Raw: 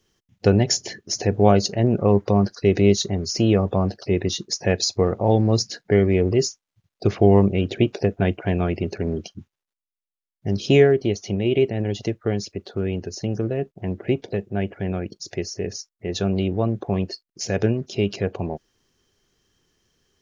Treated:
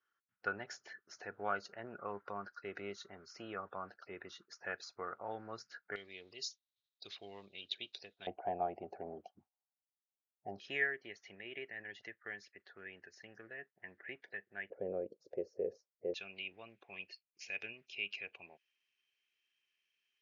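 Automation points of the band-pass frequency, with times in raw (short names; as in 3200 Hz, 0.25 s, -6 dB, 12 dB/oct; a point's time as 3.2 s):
band-pass, Q 7.5
1400 Hz
from 5.96 s 3800 Hz
from 8.27 s 760 Hz
from 10.6 s 1800 Hz
from 14.7 s 510 Hz
from 16.14 s 2500 Hz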